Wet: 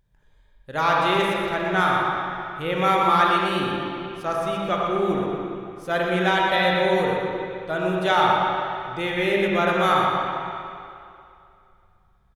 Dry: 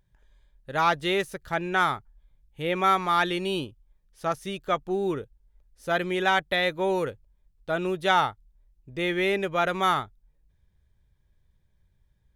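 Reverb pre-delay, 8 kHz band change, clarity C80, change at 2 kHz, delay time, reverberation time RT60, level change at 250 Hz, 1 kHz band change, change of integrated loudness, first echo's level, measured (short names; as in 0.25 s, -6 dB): 31 ms, n/a, -1.0 dB, +4.0 dB, 0.121 s, 2.5 s, +5.0 dB, +5.5 dB, +4.0 dB, -7.0 dB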